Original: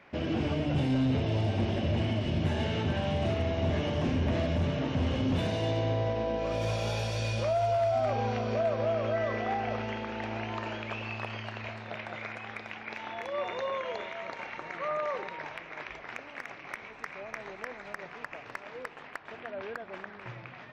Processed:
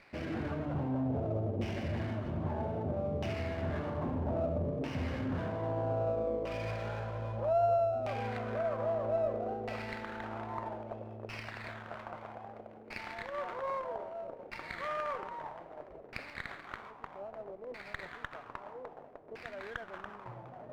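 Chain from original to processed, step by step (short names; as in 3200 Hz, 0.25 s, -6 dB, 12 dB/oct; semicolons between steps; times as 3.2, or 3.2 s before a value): reverse; upward compressor, threshold -35 dBFS; reverse; LFO low-pass saw down 0.62 Hz 450–2700 Hz; running maximum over 5 samples; gain -7 dB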